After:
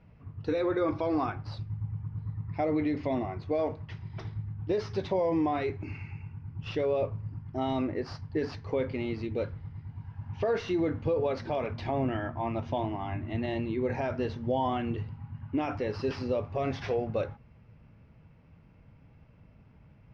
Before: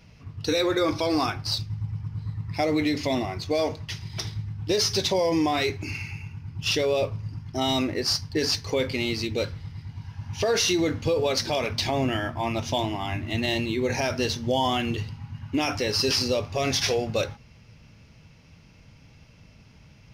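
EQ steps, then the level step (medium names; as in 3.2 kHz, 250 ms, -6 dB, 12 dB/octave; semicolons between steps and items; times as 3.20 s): low-pass 1.5 kHz 12 dB/octave; -4.0 dB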